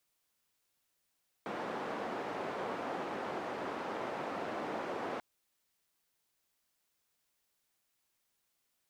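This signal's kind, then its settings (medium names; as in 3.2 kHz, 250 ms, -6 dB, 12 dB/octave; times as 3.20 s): noise band 260–860 Hz, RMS -39 dBFS 3.74 s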